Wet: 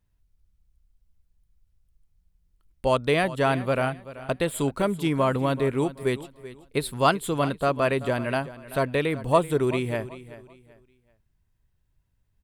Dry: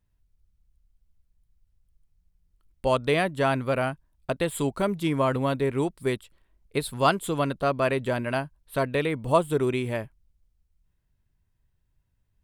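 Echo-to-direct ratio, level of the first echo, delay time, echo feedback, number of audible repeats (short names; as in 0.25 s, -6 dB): -15.5 dB, -16.0 dB, 0.383 s, 29%, 2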